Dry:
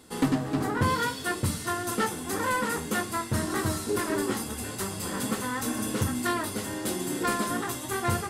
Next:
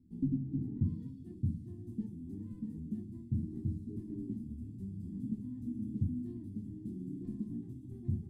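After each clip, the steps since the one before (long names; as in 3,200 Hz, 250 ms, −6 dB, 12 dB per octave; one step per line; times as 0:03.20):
inverse Chebyshev low-pass filter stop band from 510 Hz, stop band 40 dB
level −4 dB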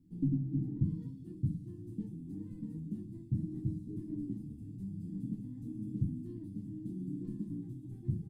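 comb filter 6.4 ms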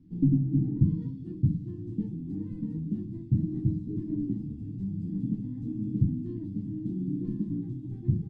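high-frequency loss of the air 140 metres
level +8.5 dB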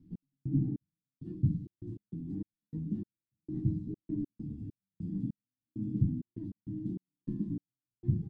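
gate pattern "x..xx...xxx.x.x" 99 BPM −60 dB
level −3.5 dB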